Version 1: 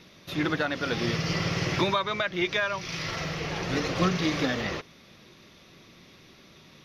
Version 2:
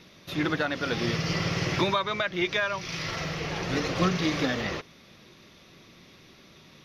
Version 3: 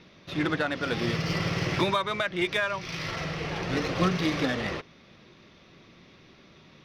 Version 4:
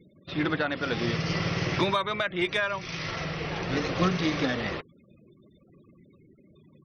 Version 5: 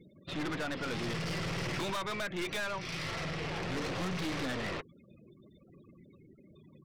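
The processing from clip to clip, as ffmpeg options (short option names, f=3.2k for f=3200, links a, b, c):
-af anull
-af "adynamicsmooth=sensitivity=4.5:basefreq=4.9k"
-af "afftfilt=real='re*gte(hypot(re,im),0.00501)':imag='im*gte(hypot(re,im),0.00501)':win_size=1024:overlap=0.75"
-af "aeval=exprs='(tanh(44.7*val(0)+0.35)-tanh(0.35))/44.7':c=same"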